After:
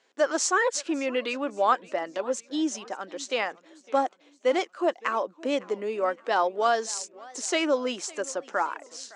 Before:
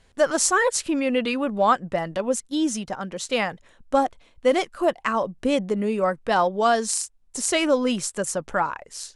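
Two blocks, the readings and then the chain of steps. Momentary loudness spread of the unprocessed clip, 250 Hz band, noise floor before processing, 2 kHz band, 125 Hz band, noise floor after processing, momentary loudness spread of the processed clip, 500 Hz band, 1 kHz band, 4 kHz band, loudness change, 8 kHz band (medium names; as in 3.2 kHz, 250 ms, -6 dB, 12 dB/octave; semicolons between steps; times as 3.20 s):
7 LU, -6.5 dB, -58 dBFS, -3.0 dB, under -15 dB, -61 dBFS, 9 LU, -4.0 dB, -3.5 dB, -3.5 dB, -4.0 dB, -6.0 dB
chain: Chebyshev band-pass 310–6900 Hz, order 3; modulated delay 562 ms, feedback 46%, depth 193 cents, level -22 dB; trim -3 dB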